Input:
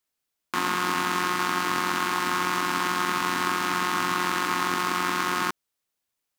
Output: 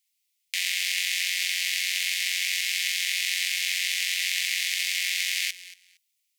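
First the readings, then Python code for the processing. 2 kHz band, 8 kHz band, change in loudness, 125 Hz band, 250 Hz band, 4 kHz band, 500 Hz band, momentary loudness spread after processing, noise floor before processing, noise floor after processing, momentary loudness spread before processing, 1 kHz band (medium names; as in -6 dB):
+0.5 dB, +6.5 dB, +0.5 dB, under -40 dB, under -40 dB, +6.5 dB, under -40 dB, 2 LU, -83 dBFS, -76 dBFS, 2 LU, under -40 dB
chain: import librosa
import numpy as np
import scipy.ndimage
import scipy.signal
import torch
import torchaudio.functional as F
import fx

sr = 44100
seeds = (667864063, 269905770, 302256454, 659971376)

y = scipy.signal.sosfilt(scipy.signal.butter(12, 2000.0, 'highpass', fs=sr, output='sos'), x)
y = fx.echo_feedback(y, sr, ms=231, feedback_pct=18, wet_db=-17.0)
y = y * librosa.db_to_amplitude(6.5)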